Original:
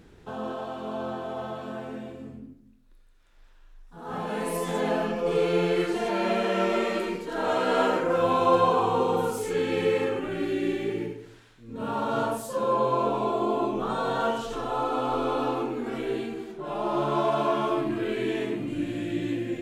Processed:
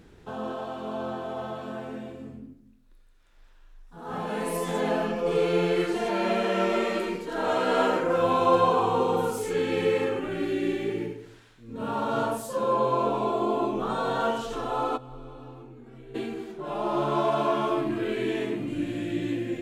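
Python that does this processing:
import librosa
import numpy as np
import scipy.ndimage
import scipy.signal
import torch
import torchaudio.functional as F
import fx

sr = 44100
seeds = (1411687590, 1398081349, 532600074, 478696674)

y = fx.curve_eq(x, sr, hz=(110.0, 210.0, 720.0), db=(0, -15, -20), at=(14.96, 16.14), fade=0.02)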